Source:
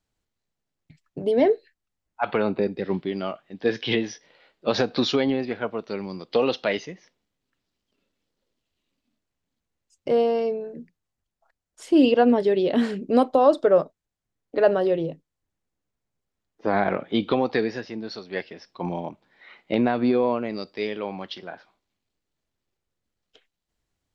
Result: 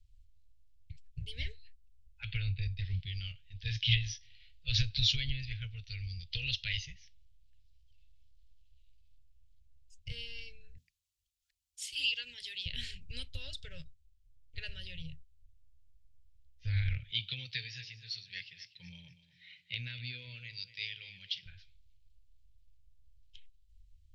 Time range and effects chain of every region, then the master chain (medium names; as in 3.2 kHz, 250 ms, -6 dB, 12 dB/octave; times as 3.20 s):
10.77–12.66 s: high-pass 910 Hz 6 dB/octave + treble shelf 6 kHz +10.5 dB
17.10–21.46 s: high-pass 160 Hz 24 dB/octave + feedback delay 242 ms, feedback 36%, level -15 dB
whole clip: inverse Chebyshev band-stop 200–1200 Hz, stop band 50 dB; tilt EQ -3.5 dB/octave; trim +6.5 dB